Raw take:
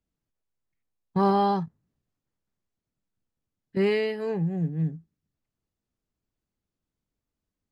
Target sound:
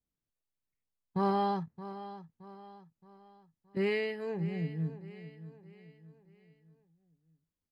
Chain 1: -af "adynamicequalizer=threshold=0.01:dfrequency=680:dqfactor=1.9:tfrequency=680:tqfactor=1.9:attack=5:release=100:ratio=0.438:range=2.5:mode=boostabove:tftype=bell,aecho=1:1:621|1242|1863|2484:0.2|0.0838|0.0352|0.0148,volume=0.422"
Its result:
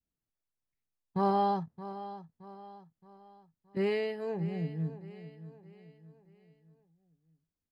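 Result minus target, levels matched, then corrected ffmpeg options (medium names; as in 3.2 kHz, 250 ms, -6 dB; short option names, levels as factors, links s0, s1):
2 kHz band -5.0 dB
-af "adynamicequalizer=threshold=0.01:dfrequency=2100:dqfactor=1.9:tfrequency=2100:tqfactor=1.9:attack=5:release=100:ratio=0.438:range=2.5:mode=boostabove:tftype=bell,aecho=1:1:621|1242|1863|2484:0.2|0.0838|0.0352|0.0148,volume=0.422"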